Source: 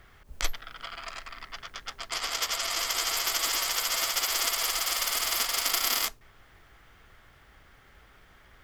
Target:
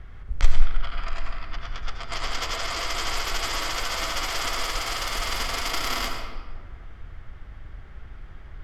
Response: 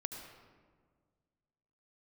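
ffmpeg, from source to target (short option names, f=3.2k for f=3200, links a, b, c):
-filter_complex "[0:a]aemphasis=mode=reproduction:type=bsi,acontrast=23[a];[1:a]atrim=start_sample=2205[b];[a][b]afir=irnorm=-1:irlink=0"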